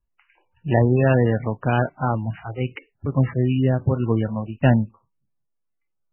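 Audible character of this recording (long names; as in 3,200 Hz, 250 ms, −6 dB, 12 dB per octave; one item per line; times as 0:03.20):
a buzz of ramps at a fixed pitch in blocks of 8 samples
sample-and-hold tremolo
MP3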